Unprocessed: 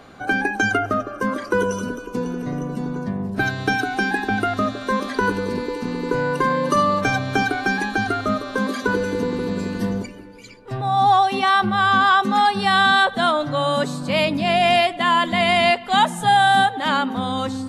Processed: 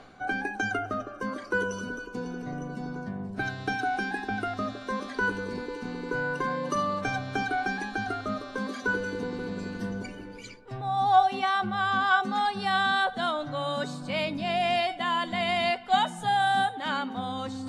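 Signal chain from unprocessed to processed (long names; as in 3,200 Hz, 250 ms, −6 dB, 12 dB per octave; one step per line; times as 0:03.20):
low-pass filter 8,500 Hz 12 dB per octave
tuned comb filter 750 Hz, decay 0.22 s, harmonics all, mix 80%
reversed playback
upward compression, threshold −35 dBFS
reversed playback
level +3 dB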